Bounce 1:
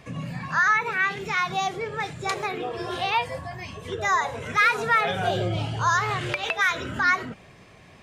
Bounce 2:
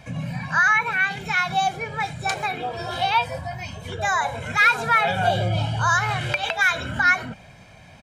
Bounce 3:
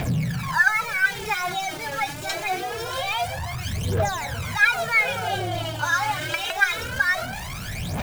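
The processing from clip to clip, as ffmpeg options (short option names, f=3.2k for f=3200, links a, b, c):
-af "aecho=1:1:1.3:0.63,volume=1.5dB"
-af "aeval=exprs='val(0)+0.5*0.0631*sgn(val(0))':c=same,aphaser=in_gain=1:out_gain=1:delay=3.7:decay=0.77:speed=0.25:type=triangular,volume=-7.5dB"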